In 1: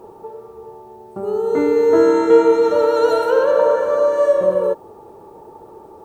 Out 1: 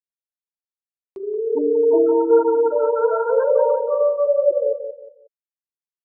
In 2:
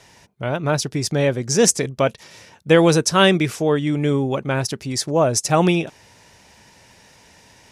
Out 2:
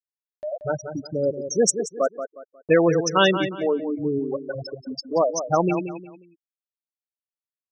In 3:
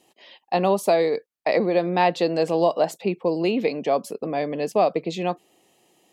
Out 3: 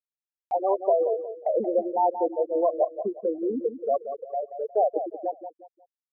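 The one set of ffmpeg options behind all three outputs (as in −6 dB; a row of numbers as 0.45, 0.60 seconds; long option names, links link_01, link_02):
-filter_complex "[0:a]highpass=frequency=290:poles=1,afftfilt=real='re*gte(hypot(re,im),0.355)':imag='im*gte(hypot(re,im),0.355)':win_size=1024:overlap=0.75,acompressor=mode=upward:threshold=-25dB:ratio=2.5,asplit=2[link_01][link_02];[link_02]adelay=180,lowpass=frequency=3400:poles=1,volume=-9.5dB,asplit=2[link_03][link_04];[link_04]adelay=180,lowpass=frequency=3400:poles=1,volume=0.31,asplit=2[link_05][link_06];[link_06]adelay=180,lowpass=frequency=3400:poles=1,volume=0.31[link_07];[link_03][link_05][link_07]amix=inputs=3:normalize=0[link_08];[link_01][link_08]amix=inputs=2:normalize=0,aresample=22050,aresample=44100,volume=-1.5dB"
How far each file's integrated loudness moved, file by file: −3.0, −4.5, −4.0 LU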